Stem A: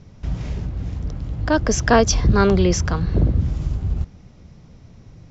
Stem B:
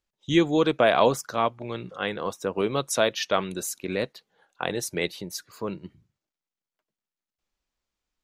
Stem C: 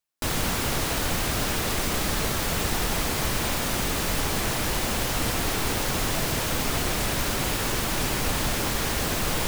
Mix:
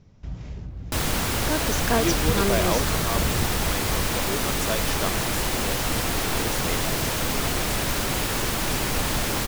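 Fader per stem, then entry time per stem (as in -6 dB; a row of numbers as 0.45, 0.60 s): -9.0, -6.5, +1.0 dB; 0.00, 1.70, 0.70 s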